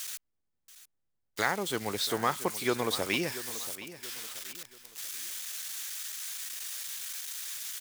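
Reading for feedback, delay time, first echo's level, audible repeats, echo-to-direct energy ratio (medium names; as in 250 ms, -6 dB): 36%, 682 ms, -14.5 dB, 3, -14.0 dB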